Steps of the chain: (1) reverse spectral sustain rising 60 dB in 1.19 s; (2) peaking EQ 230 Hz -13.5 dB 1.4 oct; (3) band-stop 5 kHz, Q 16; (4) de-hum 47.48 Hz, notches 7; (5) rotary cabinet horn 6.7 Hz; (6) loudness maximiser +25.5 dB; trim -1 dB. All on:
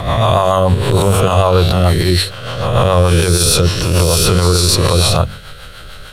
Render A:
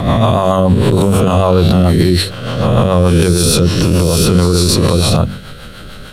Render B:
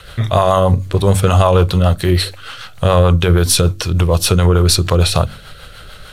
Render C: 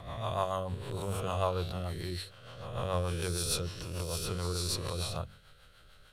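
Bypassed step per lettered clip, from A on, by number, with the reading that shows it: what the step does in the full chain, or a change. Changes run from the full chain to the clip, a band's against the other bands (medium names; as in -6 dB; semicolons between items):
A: 2, 250 Hz band +8.5 dB; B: 1, 125 Hz band +2.5 dB; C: 6, crest factor change +8.5 dB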